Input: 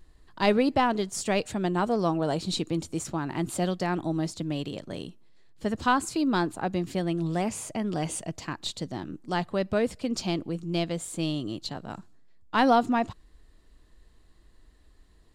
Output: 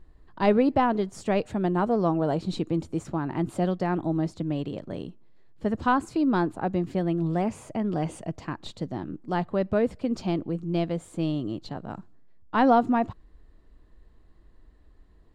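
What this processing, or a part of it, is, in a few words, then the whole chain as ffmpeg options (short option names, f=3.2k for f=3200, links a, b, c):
through cloth: -af "highshelf=f=2.8k:g=-17,volume=2.5dB"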